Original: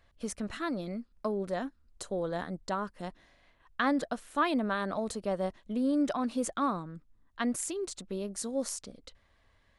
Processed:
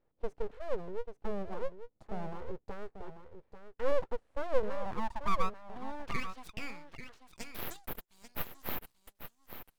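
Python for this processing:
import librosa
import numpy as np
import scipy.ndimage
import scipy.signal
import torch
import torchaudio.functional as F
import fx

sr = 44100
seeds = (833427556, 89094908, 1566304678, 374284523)

p1 = fx.filter_sweep_bandpass(x, sr, from_hz=250.0, to_hz=7100.0, start_s=4.51, end_s=7.85, q=4.2)
p2 = np.abs(p1)
p3 = p2 + fx.echo_single(p2, sr, ms=840, db=-10.0, dry=0)
p4 = fx.sustainer(p3, sr, db_per_s=150.0, at=(6.96, 7.99))
y = F.gain(torch.from_numpy(p4), 8.5).numpy()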